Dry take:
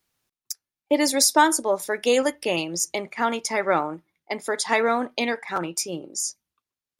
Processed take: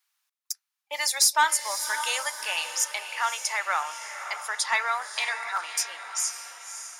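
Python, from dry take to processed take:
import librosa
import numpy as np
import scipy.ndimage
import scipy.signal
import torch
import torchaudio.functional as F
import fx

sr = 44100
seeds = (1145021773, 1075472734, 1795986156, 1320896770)

y = scipy.signal.sosfilt(scipy.signal.butter(4, 940.0, 'highpass', fs=sr, output='sos'), x)
y = 10.0 ** (-8.5 / 20.0) * np.tanh(y / 10.0 ** (-8.5 / 20.0))
y = fx.echo_diffused(y, sr, ms=568, feedback_pct=46, wet_db=-9.5)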